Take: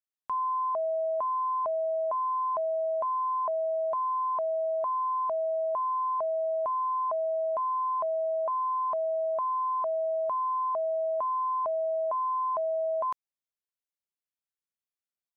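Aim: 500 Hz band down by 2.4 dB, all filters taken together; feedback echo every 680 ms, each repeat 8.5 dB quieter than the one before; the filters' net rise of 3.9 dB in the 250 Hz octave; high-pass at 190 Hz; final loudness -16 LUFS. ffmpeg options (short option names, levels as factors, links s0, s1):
-af "highpass=190,equalizer=f=250:t=o:g=8.5,equalizer=f=500:t=o:g=-5,aecho=1:1:680|1360|2040|2720:0.376|0.143|0.0543|0.0206,volume=5.96"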